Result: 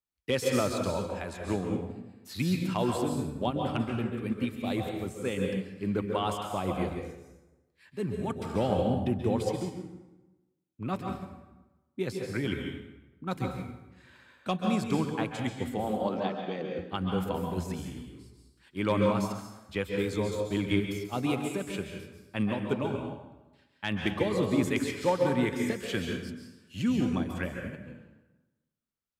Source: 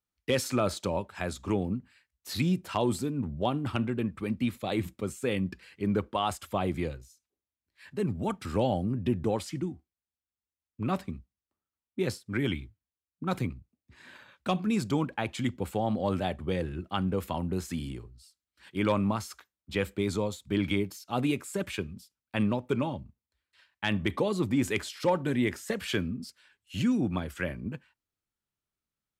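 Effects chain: 15.84–16.79 s: elliptic band-pass 190–5900 Hz; plate-style reverb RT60 1.1 s, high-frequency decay 0.7×, pre-delay 120 ms, DRR 1 dB; upward expansion 1.5:1, over -35 dBFS

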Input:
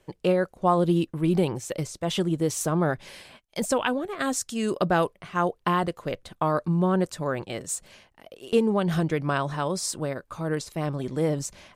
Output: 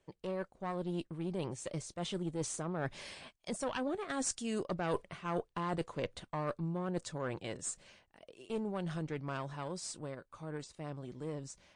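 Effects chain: single-diode clipper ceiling -22 dBFS; Doppler pass-by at 4.69 s, 9 m/s, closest 4.3 m; reverse; compression 8:1, threshold -41 dBFS, peak gain reduction 21.5 dB; reverse; trim +8.5 dB; MP3 48 kbps 22.05 kHz

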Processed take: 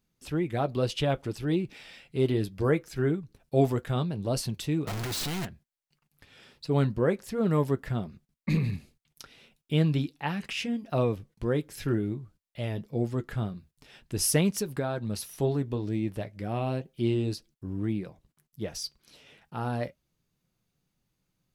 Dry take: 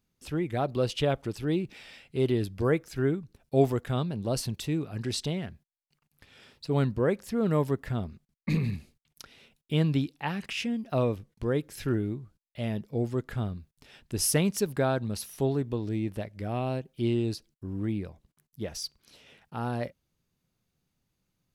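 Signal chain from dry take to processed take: 4.87–5.45 s: one-bit comparator; flange 2 Hz, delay 5.3 ms, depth 1.9 ms, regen -61%; 14.57–15.07 s: compression, threshold -31 dBFS, peak gain reduction 6 dB; trim +4.5 dB

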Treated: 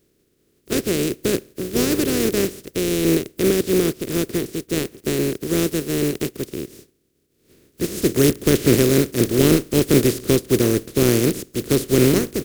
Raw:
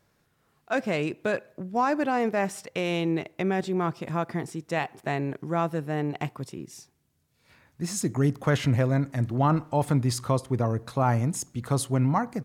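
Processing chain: spectral contrast reduction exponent 0.2; resonant low shelf 570 Hz +13.5 dB, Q 3; trim -1 dB

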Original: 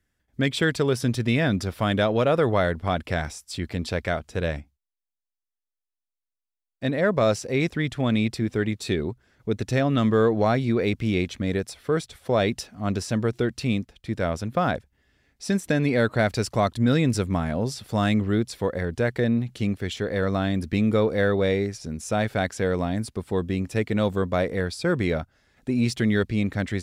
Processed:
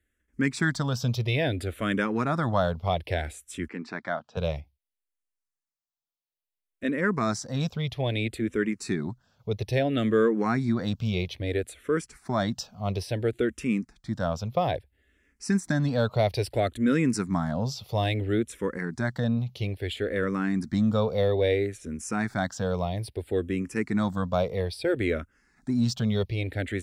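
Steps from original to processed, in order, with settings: 3.68–4.37 s: band-pass 270–3000 Hz; barber-pole phaser -0.6 Hz

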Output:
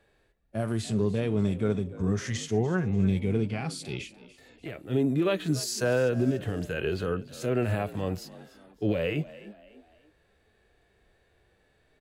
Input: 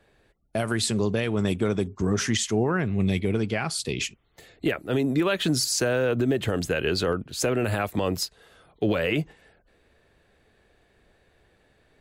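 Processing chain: harmonic-percussive split percussive -18 dB; frequency-shifting echo 293 ms, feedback 40%, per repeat +51 Hz, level -18 dB

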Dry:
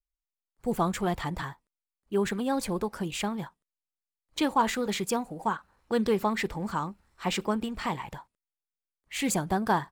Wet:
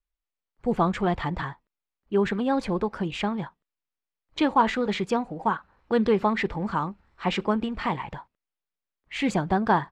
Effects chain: low-pass 3.3 kHz 12 dB/octave; trim +4 dB

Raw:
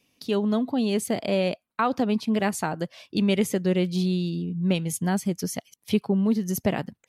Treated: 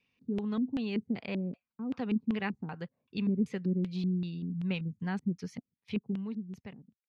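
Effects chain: fade out at the end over 1.58 s; graphic EQ with 31 bands 315 Hz -11 dB, 630 Hz -12 dB, 3.15 kHz -11 dB; LFO low-pass square 2.6 Hz 280–3000 Hz; trim -8.5 dB

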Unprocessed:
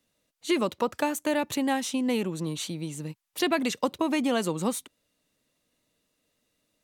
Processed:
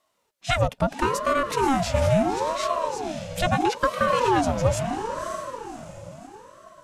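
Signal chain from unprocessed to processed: small resonant body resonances 220/1100 Hz, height 8 dB, ringing for 35 ms; on a send: echo that smears into a reverb 558 ms, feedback 43%, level -7.5 dB; on the sum: formant shift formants -4 st; ring modulator with a swept carrier 600 Hz, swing 45%, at 0.75 Hz; trim +4.5 dB

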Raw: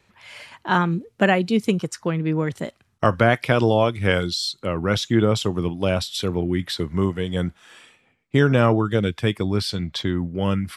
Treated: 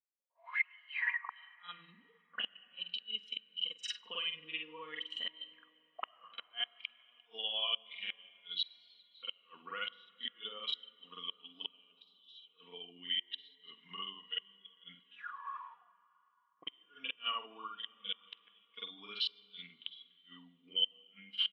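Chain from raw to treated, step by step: high-pass 140 Hz 12 dB/octave; expander -43 dBFS; comb 4.2 ms, depth 57%; compression 10:1, threshold -26 dBFS, peak gain reduction 15.5 dB; granular stretch 2×, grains 182 ms; echo from a far wall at 26 m, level -21 dB; auto-wah 560–3000 Hz, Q 12, up, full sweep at -37.5 dBFS; small resonant body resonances 1.1/3.9 kHz, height 13 dB, ringing for 45 ms; inverted gate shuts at -42 dBFS, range -28 dB; on a send at -10 dB: distance through air 230 m + reverberation RT60 4.9 s, pre-delay 55 ms; on the sum: spectral contrast expander 1.5:1; trim +17.5 dB

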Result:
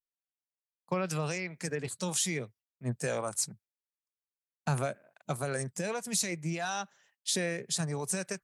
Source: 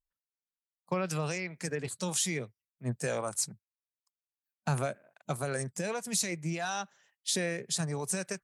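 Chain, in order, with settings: gate with hold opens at -59 dBFS

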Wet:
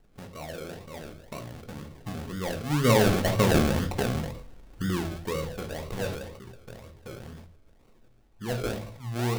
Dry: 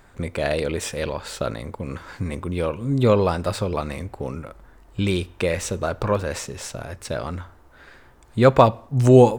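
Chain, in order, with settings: Doppler pass-by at 3.67 s, 22 m/s, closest 7.2 m; steep low-pass 1.7 kHz 72 dB/octave; tilt shelf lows +5.5 dB, about 1.1 kHz; de-hum 55.52 Hz, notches 31; in parallel at -1 dB: compression, threshold -56 dBFS, peak gain reduction 33.5 dB; on the sum: decimation with a swept rate 37×, swing 60% 2 Hz; on a send at -6.5 dB: reverberation RT60 0.35 s, pre-delay 3 ms; on the sum: decay stretcher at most 59 dB/s

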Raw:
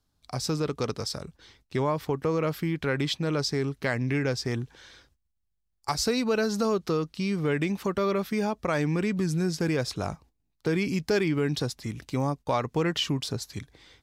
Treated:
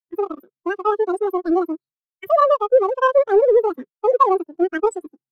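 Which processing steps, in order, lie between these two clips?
square wave that keeps the level; wide varispeed 2.64×; spectral contrast expander 2.5:1; trim +6.5 dB

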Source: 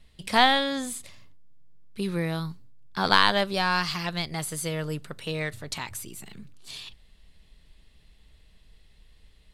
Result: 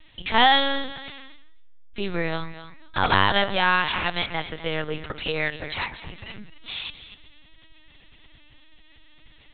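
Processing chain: bass shelf 430 Hz -9.5 dB; de-hum 150.5 Hz, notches 15; in parallel at +1.5 dB: compression 4:1, threshold -42 dBFS, peak gain reduction 22 dB; on the sum: wavefolder -12.5 dBFS; on a send: thinning echo 251 ms, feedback 29%, high-pass 630 Hz, level -13 dB; on the sum: LPC vocoder at 8 kHz pitch kept; trim +5.5 dB

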